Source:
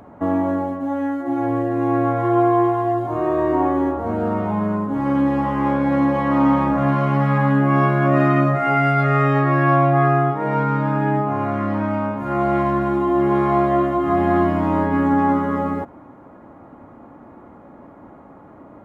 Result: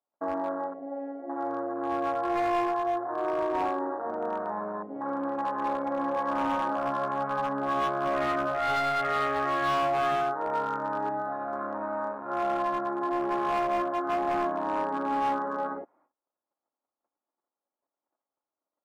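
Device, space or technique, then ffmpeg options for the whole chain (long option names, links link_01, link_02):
walkie-talkie: -filter_complex "[0:a]afwtdn=0.0794,asettb=1/sr,asplit=3[link_01][link_02][link_03];[link_01]atrim=end=11.094[link_04];[link_02]atrim=start=11.09:end=11.53,asetpts=PTS-STARTPTS,afade=type=in:duration=0.004:curve=qsin,afade=type=out:start_time=0.436:duration=0.004:curve=qsin,equalizer=frequency=400:width_type=o:width=0.33:gain=-10,equalizer=frequency=1000:width_type=o:width=0.33:gain=-9,equalizer=frequency=2000:width_type=o:width=0.33:gain=-5[link_05];[link_03]atrim=start=11.526[link_06];[link_04][link_05]acrossfade=duration=0.004:curve1=hsin:curve2=qsin[link_07];[link_07][link_06]acrossfade=duration=0.004:curve1=qsin:curve2=hsin,highpass=530,lowpass=2300,asoftclip=type=hard:threshold=-18.5dB,agate=range=-25dB:threshold=-60dB:ratio=16:detection=peak,volume=-4.5dB"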